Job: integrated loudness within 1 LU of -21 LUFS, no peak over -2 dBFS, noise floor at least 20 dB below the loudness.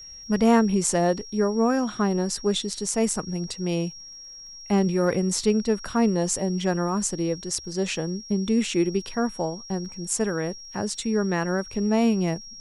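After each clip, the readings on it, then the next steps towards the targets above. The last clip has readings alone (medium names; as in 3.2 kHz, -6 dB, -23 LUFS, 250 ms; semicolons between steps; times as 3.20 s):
tick rate 56 per s; steady tone 5.6 kHz; tone level -40 dBFS; loudness -25.0 LUFS; peak level -7.0 dBFS; loudness target -21.0 LUFS
-> de-click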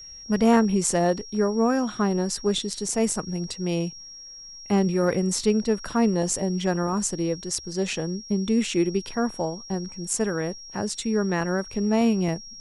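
tick rate 0.24 per s; steady tone 5.6 kHz; tone level -40 dBFS
-> band-stop 5.6 kHz, Q 30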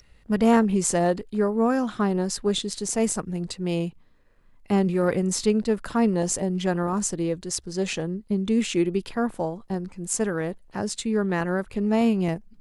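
steady tone not found; loudness -25.0 LUFS; peak level -7.0 dBFS; loudness target -21.0 LUFS
-> trim +4 dB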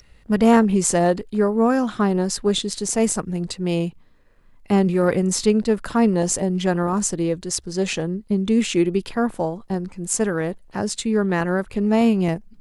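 loudness -21.0 LUFS; peak level -3.0 dBFS; noise floor -52 dBFS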